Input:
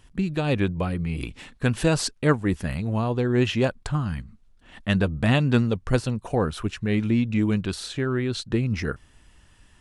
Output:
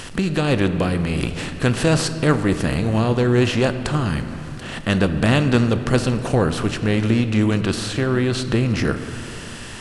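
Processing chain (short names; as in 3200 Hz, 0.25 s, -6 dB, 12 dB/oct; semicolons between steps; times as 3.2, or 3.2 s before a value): per-bin compression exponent 0.6; on a send at -9 dB: reverb RT60 2.3 s, pre-delay 6 ms; on the sum: mismatched tape noise reduction encoder only; gain +1 dB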